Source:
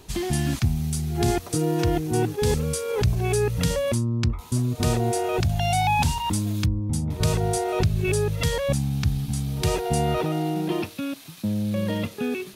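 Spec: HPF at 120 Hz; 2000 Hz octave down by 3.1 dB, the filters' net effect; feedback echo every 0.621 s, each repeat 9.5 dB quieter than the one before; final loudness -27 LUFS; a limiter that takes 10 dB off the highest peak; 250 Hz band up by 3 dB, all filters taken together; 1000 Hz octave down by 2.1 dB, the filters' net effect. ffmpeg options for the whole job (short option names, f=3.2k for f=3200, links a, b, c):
-af "highpass=120,equalizer=f=250:t=o:g=5,equalizer=f=1k:t=o:g=-3,equalizer=f=2k:t=o:g=-3.5,alimiter=limit=-20dB:level=0:latency=1,aecho=1:1:621|1242|1863|2484:0.335|0.111|0.0365|0.012,volume=1dB"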